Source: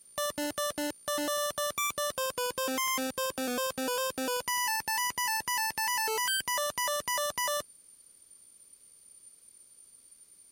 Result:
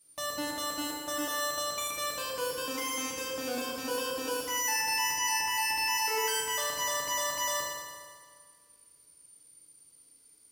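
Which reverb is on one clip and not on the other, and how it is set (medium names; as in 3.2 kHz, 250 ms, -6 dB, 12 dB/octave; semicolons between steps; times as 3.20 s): FDN reverb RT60 1.9 s, low-frequency decay 0.95×, high-frequency decay 0.8×, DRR -5 dB; trim -7.5 dB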